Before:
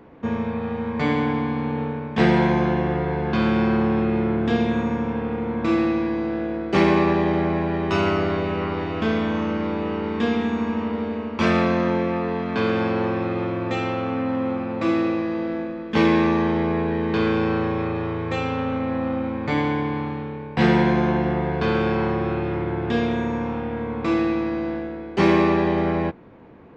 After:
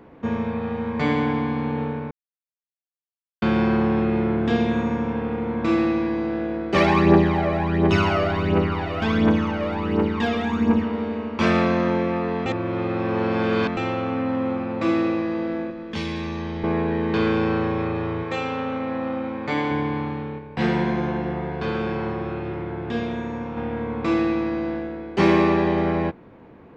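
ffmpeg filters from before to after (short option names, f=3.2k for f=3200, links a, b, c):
-filter_complex "[0:a]asplit=3[a][b][c];[a]afade=t=out:st=6.74:d=0.02[d];[b]aphaser=in_gain=1:out_gain=1:delay=1.8:decay=0.61:speed=1.4:type=triangular,afade=t=in:st=6.74:d=0.02,afade=t=out:st=10.84:d=0.02[e];[c]afade=t=in:st=10.84:d=0.02[f];[d][e][f]amix=inputs=3:normalize=0,asettb=1/sr,asplit=3[g][h][i];[g]atrim=end=15.704[j];[h]atrim=start=15.7:end=16.64,asetpts=PTS-STARTPTS,afade=t=in:d=0.004:c=qsin,afade=t=out:st=0.936:d=0.004:c=qsin,acrossover=split=130|3000[k][l][m];[l]acompressor=threshold=-31dB:ratio=4:attack=3.2:release=140:knee=2.83:detection=peak[n];[k][n][m]amix=inputs=3:normalize=0[o];[i]atrim=start=16.636[p];[j][o]acrossfade=d=0.004:c1=hsin:c2=qsin[q];[q][p]acrossfade=d=0.004:c1=qsin:c2=hsin,asettb=1/sr,asplit=3[r][s][t];[r]atrim=end=18.234[u];[s]atrim=start=18.23:end=19.71,asetpts=PTS-STARTPTS,afade=t=in:d=0.004:c=qsin,afade=t=out:st=1.476:d=0.004:c=qsin,highpass=f=250:p=1[v];[t]atrim=start=19.706[w];[u][v]acrossfade=d=0.004:c1=hsin:c2=qsin[x];[x][w]acrossfade=d=0.004:c1=qsin:c2=hsin,asplit=3[y][z][aa];[y]afade=t=out:st=20.38:d=0.02[ab];[z]flanger=delay=4.1:depth=8.7:regen=85:speed=1.1:shape=triangular,afade=t=in:st=20.38:d=0.02,afade=t=out:st=23.56:d=0.02[ac];[aa]afade=t=in:st=23.56:d=0.02[ad];[ab][ac][ad]amix=inputs=3:normalize=0,asplit=5[ae][af][ag][ah][ai];[ae]atrim=end=2.11,asetpts=PTS-STARTPTS,afade=t=out:st=2.106:d=0.004:c=hsin[aj];[af]atrim=start=2.11:end=3.42,asetpts=PTS-STARTPTS,volume=0[ak];[ag]atrim=start=3.42:end=12.462,asetpts=PTS-STARTPTS,afade=t=in:d=0.004:c=hsin[al];[ah]atrim=start=12.458:end=13.772,asetpts=PTS-STARTPTS,areverse[am];[ai]atrim=start=13.768[an];[aj][ak][al]concat=n=3:v=0:a=1[ao];[ao][am]acrossfade=d=0.004:c1=hsin:c2=hsin[ap];[ap][an]acrossfade=d=0.004:c1=hsin:c2=hsin"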